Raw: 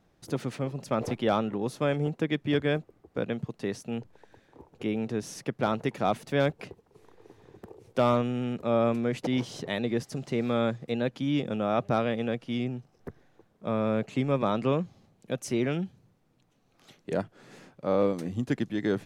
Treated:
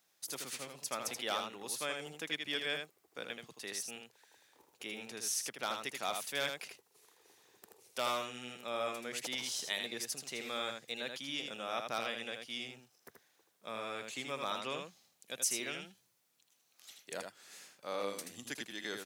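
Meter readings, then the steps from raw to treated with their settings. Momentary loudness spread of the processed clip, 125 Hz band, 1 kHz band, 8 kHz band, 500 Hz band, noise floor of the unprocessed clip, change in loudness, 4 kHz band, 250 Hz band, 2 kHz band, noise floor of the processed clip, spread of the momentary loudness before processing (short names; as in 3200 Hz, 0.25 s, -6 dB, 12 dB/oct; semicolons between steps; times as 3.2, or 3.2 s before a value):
13 LU, -25.5 dB, -8.5 dB, +8.5 dB, -14.0 dB, -67 dBFS, -9.5 dB, +2.5 dB, -20.5 dB, -2.5 dB, -75 dBFS, 10 LU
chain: differentiator; echo 80 ms -5.5 dB; gain +7.5 dB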